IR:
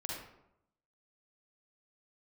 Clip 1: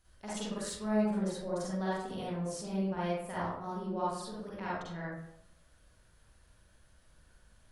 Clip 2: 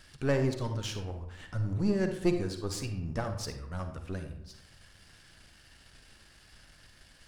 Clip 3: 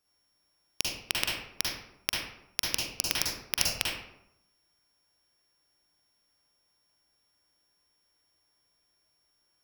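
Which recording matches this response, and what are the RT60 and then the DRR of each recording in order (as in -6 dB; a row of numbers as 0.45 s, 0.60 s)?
3; 0.80 s, 0.80 s, 0.80 s; -8.0 dB, 6.0 dB, -3.5 dB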